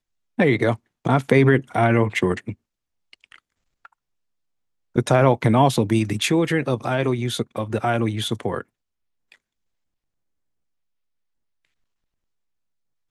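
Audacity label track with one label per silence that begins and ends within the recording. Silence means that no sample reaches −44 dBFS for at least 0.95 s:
3.860000	4.950000	silence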